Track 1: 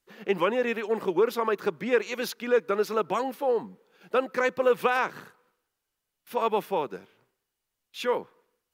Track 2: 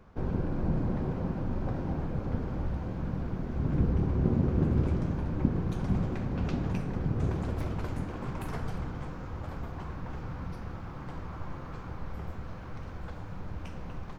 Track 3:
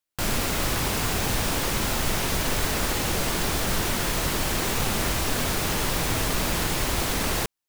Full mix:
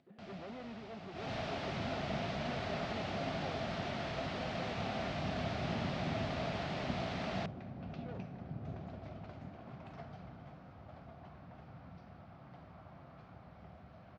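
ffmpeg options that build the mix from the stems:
-filter_complex "[0:a]bandpass=f=180:t=q:w=1.2:csg=0,asoftclip=type=tanh:threshold=-37.5dB,volume=-5dB[a];[1:a]adelay=1450,volume=-11.5dB[b];[2:a]lowpass=f=2.6k:p=1,volume=-10.5dB,afade=t=in:st=1.11:d=0.22:silence=0.237137[c];[a][b][c]amix=inputs=3:normalize=0,highpass=110,equalizer=f=330:t=q:w=4:g=-6,equalizer=f=470:t=q:w=4:g=-7,equalizer=f=670:t=q:w=4:g=10,equalizer=f=990:t=q:w=4:g=-6,equalizer=f=1.6k:t=q:w=4:g=-3,lowpass=f=4.9k:w=0.5412,lowpass=f=4.9k:w=1.3066,acompressor=mode=upward:threshold=-53dB:ratio=2.5"

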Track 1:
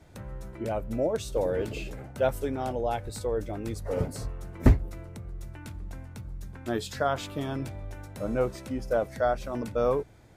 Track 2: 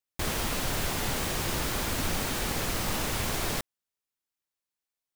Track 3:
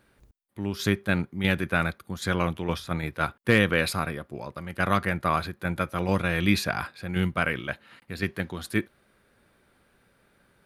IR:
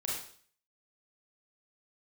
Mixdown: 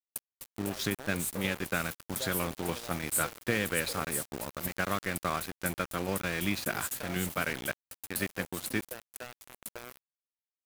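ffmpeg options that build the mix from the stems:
-filter_complex "[0:a]acompressor=threshold=-37dB:ratio=4,aexciter=amount=15.9:drive=6.5:freq=7.7k,asoftclip=type=tanh:threshold=-15.5dB,volume=-3dB[a];[1:a]adelay=1450,volume=-17.5dB[b];[2:a]equalizer=f=950:w=1.7:g=-3,acompressor=threshold=-29dB:ratio=2.5,volume=0.5dB[c];[a][b][c]amix=inputs=3:normalize=0,highpass=f=160:p=1,aeval=exprs='val(0)*gte(abs(val(0)),0.0188)':c=same"

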